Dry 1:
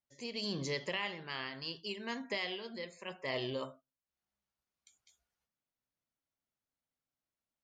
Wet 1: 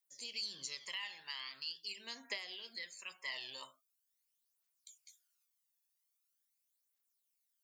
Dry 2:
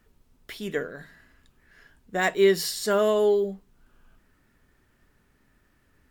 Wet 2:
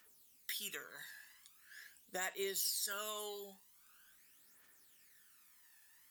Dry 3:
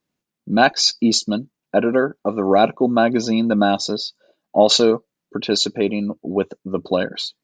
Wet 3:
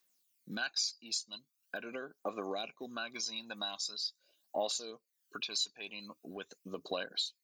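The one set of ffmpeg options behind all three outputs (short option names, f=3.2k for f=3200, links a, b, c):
-af "aderivative,acompressor=threshold=-50dB:ratio=3,aphaser=in_gain=1:out_gain=1:delay=1.2:decay=0.56:speed=0.43:type=triangular,volume=7.5dB"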